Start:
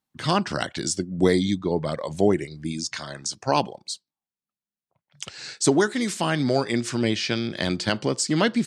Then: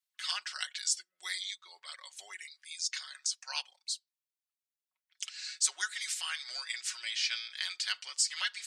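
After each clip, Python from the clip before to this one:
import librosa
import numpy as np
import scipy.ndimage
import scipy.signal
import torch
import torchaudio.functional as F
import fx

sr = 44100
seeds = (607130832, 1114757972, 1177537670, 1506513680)

y = scipy.signal.sosfilt(scipy.signal.bessel(4, 2300.0, 'highpass', norm='mag', fs=sr, output='sos'), x)
y = y + 0.65 * np.pad(y, (int(5.4 * sr / 1000.0), 0))[:len(y)]
y = y * 10.0 ** (-4.0 / 20.0)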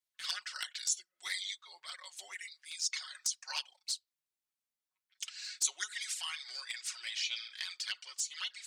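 y = fx.env_flanger(x, sr, rest_ms=9.4, full_db=-29.0)
y = fx.rider(y, sr, range_db=5, speed_s=2.0)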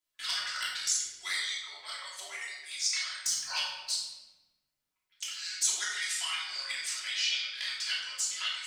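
y = fx.room_shoebox(x, sr, seeds[0], volume_m3=710.0, walls='mixed', distance_m=3.0)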